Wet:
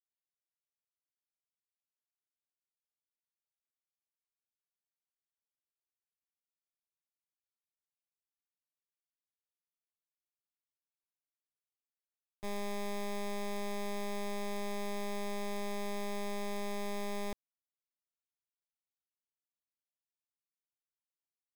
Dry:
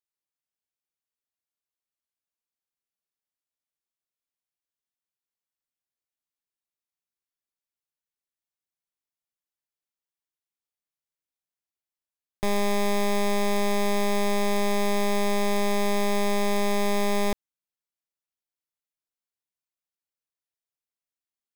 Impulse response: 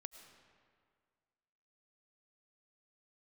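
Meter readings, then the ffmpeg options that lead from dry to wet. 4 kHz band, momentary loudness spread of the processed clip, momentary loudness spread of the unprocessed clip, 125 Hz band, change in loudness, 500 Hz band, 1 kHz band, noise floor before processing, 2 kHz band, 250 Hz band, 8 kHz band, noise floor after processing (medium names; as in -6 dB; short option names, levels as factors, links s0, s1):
-13.5 dB, 2 LU, 2 LU, under -10 dB, -13.5 dB, -13.5 dB, -13.5 dB, under -85 dBFS, -13.5 dB, -13.5 dB, -13.5 dB, under -85 dBFS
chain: -af "agate=range=0.0224:threshold=0.355:ratio=3:detection=peak,volume=4.73"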